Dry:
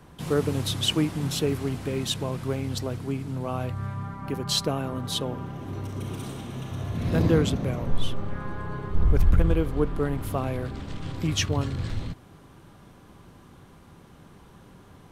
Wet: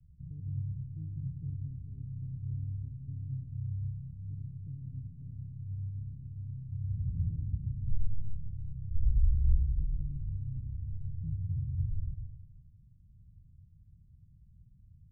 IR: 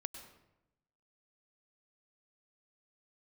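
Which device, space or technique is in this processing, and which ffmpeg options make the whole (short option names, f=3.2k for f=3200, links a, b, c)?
club heard from the street: -filter_complex "[0:a]alimiter=limit=-15.5dB:level=0:latency=1:release=192,lowpass=f=120:w=0.5412,lowpass=f=120:w=1.3066[a];[1:a]atrim=start_sample=2205[b];[a][b]afir=irnorm=-1:irlink=0"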